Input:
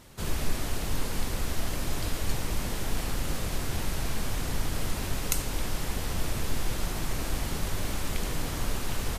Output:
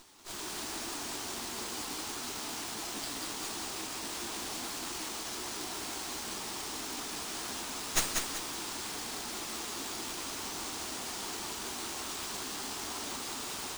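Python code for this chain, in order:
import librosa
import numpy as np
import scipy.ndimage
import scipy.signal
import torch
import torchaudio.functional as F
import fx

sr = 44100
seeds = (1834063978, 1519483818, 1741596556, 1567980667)

y = fx.octave_divider(x, sr, octaves=2, level_db=3.0)
y = fx.stretch_vocoder_free(y, sr, factor=1.5)
y = scipy.signal.sosfilt(scipy.signal.butter(2, 300.0, 'highpass', fs=sr, output='sos'), y)
y = fx.high_shelf(y, sr, hz=3900.0, db=10.5)
y = fx.fixed_phaser(y, sr, hz=540.0, stages=6)
y = fx.echo_feedback(y, sr, ms=190, feedback_pct=35, wet_db=-4)
y = fx.running_max(y, sr, window=3)
y = y * 10.0 ** (-2.0 / 20.0)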